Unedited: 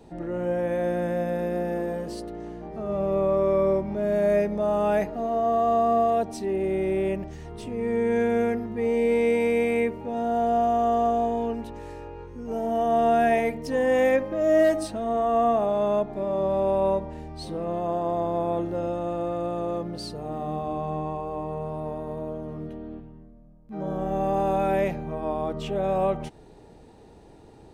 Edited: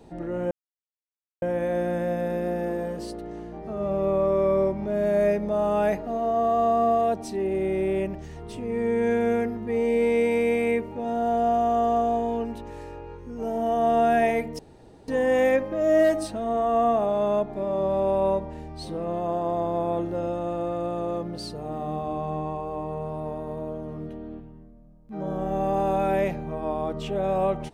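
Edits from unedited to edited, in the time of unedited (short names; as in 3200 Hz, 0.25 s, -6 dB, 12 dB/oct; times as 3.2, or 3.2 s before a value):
0.51 insert silence 0.91 s
13.68 insert room tone 0.49 s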